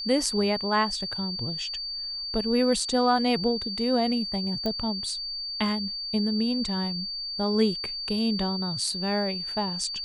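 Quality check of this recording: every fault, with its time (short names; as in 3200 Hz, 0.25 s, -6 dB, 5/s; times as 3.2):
tone 4600 Hz -31 dBFS
4.66 pop -17 dBFS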